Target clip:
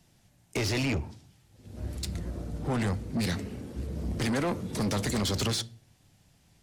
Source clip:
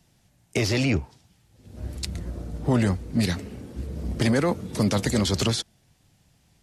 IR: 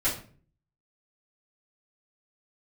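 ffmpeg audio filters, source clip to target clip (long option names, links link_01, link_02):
-filter_complex "[0:a]aeval=exprs='0.335*(cos(1*acos(clip(val(0)/0.335,-1,1)))-cos(1*PI/2))+0.0168*(cos(7*acos(clip(val(0)/0.335,-1,1)))-cos(7*PI/2))':channel_layout=same,asplit=2[link_01][link_02];[1:a]atrim=start_sample=2205[link_03];[link_02][link_03]afir=irnorm=-1:irlink=0,volume=-28.5dB[link_04];[link_01][link_04]amix=inputs=2:normalize=0,asoftclip=type=tanh:threshold=-28dB,volume=3dB"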